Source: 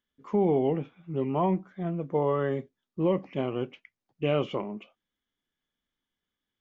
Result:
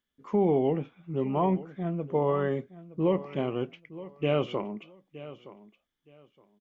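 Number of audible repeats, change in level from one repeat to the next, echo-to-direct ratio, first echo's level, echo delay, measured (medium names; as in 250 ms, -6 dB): 2, -13.5 dB, -16.5 dB, -16.5 dB, 918 ms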